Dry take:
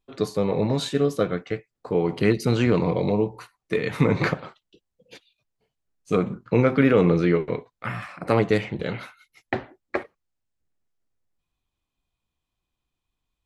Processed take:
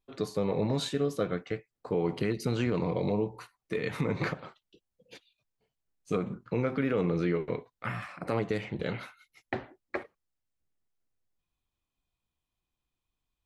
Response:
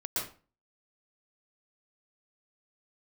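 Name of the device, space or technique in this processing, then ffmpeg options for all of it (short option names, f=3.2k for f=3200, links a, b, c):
stacked limiters: -af "alimiter=limit=-10.5dB:level=0:latency=1:release=285,alimiter=limit=-14dB:level=0:latency=1:release=114,volume=-4.5dB"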